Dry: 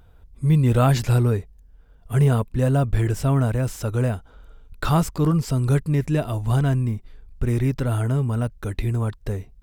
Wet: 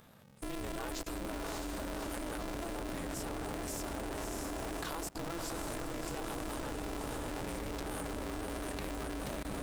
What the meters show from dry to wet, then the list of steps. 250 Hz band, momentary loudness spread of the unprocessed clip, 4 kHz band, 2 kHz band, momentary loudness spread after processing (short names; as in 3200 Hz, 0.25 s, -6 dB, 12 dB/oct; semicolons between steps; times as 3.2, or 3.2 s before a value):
-15.5 dB, 9 LU, -6.0 dB, -8.5 dB, 1 LU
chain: tone controls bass -12 dB, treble +8 dB; diffused feedback echo 0.608 s, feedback 46%, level -7 dB; downsampling 32000 Hz; compressor 4:1, threshold -40 dBFS, peak gain reduction 19 dB; on a send: repeats that get brighter 0.24 s, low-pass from 200 Hz, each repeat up 1 oct, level 0 dB; on the sum: level quantiser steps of 21 dB; polarity switched at an audio rate 170 Hz; gain +3 dB